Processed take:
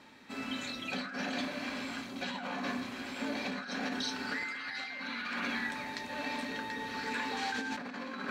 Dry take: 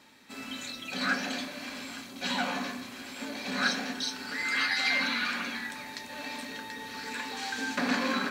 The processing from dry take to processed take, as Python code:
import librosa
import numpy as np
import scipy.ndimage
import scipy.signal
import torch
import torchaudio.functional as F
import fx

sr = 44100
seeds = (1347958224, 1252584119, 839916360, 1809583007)

y = fx.lowpass(x, sr, hz=2700.0, slope=6)
y = fx.over_compress(y, sr, threshold_db=-37.0, ratio=-1.0)